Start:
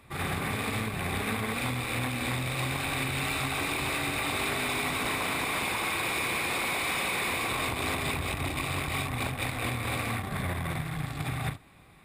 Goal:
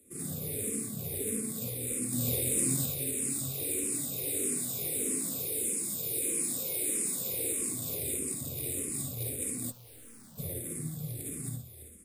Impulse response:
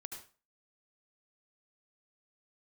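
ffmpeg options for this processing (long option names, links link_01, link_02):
-filter_complex "[0:a]firequalizer=gain_entry='entry(480,0);entry(840,-26);entry(7400,0)':delay=0.05:min_phase=1,asplit=7[link_01][link_02][link_03][link_04][link_05][link_06][link_07];[link_02]adelay=333,afreqshift=-41,volume=-11.5dB[link_08];[link_03]adelay=666,afreqshift=-82,volume=-17dB[link_09];[link_04]adelay=999,afreqshift=-123,volume=-22.5dB[link_10];[link_05]adelay=1332,afreqshift=-164,volume=-28dB[link_11];[link_06]adelay=1665,afreqshift=-205,volume=-33.6dB[link_12];[link_07]adelay=1998,afreqshift=-246,volume=-39.1dB[link_13];[link_01][link_08][link_09][link_10][link_11][link_12][link_13]amix=inputs=7:normalize=0,asettb=1/sr,asplit=3[link_14][link_15][link_16];[link_14]atrim=end=5.394[link_17];[link_15]atrim=start=5.39:end=6.22,asetpts=PTS-STARTPTS,afade=type=in:duration=0.004:curve=qsin,afade=type=out:start_time=0.826:duration=0.004:curve=qsin,acrossover=split=480|3000[link_18][link_19][link_20];[link_19]acompressor=threshold=-50dB:ratio=6[link_21];[link_18][link_21][link_20]amix=inputs=3:normalize=0[link_22];[link_16]atrim=start=6.216[link_23];[link_17][link_22]acrossfade=duration=0.004:curve1=hsin:curve2=qsin[link_24];[link_24][link_23]acrossfade=duration=0.004:curve1=qsin:curve2=hsin,highpass=140,equalizer=frequency=12000:width_type=o:width=2.2:gain=12,asettb=1/sr,asplit=3[link_25][link_26][link_27];[link_25]atrim=end=2.124[link_28];[link_26]atrim=start=2.12:end=2.86,asetpts=PTS-STARTPTS,afade=type=in:duration=0.004:curve=qsin,afade=type=out:start_time=0.736:duration=0.004:curve=qsin,acontrast=44[link_29];[link_27]atrim=start=2.856[link_30];[link_28][link_29]acrossfade=duration=0.004:curve1=hsin:curve2=qsin[link_31];[link_31][link_30]acrossfade=duration=0.004:curve1=qsin:curve2=hsin[link_32];[1:a]atrim=start_sample=2205,asetrate=61740,aresample=44100[link_33];[link_32][link_33]afir=irnorm=-1:irlink=0,asplit=3[link_34][link_35][link_36];[link_34]afade=type=out:start_time=9.7:duration=0.02[link_37];[link_35]aeval=exprs='(tanh(631*val(0)+0.6)-tanh(0.6))/631':channel_layout=same,afade=type=in:start_time=9.7:duration=0.02,afade=type=out:start_time=10.37:duration=0.02[link_38];[link_36]afade=type=in:start_time=10.37:duration=0.02[link_39];[link_37][link_38][link_39]amix=inputs=3:normalize=0,asplit=2[link_40][link_41];[link_41]afreqshift=-1.6[link_42];[link_40][link_42]amix=inputs=2:normalize=1,volume=6.5dB"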